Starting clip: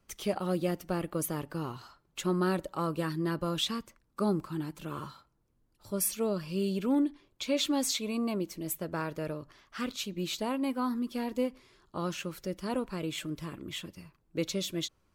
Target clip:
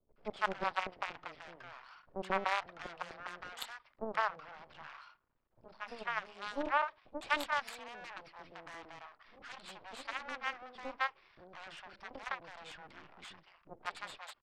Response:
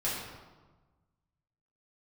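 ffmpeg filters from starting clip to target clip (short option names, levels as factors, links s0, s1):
-filter_complex "[0:a]aresample=11025,aeval=exprs='max(val(0),0)':c=same,aresample=44100,aeval=exprs='0.15*(cos(1*acos(clip(val(0)/0.15,-1,1)))-cos(1*PI/2))+0.0237*(cos(3*acos(clip(val(0)/0.15,-1,1)))-cos(3*PI/2))+0.00266*(cos(4*acos(clip(val(0)/0.15,-1,1)))-cos(4*PI/2))+0.00299*(cos(5*acos(clip(val(0)/0.15,-1,1)))-cos(5*PI/2))+0.0188*(cos(8*acos(clip(val(0)/0.15,-1,1)))-cos(8*PI/2))':c=same,acrossover=split=530 2700:gain=0.2 1 0.224[s0][s1][s2];[s0][s1][s2]amix=inputs=3:normalize=0,asetrate=46305,aresample=44100,acrossover=split=600[s3][s4];[s4]adelay=160[s5];[s3][s5]amix=inputs=2:normalize=0,volume=3.16"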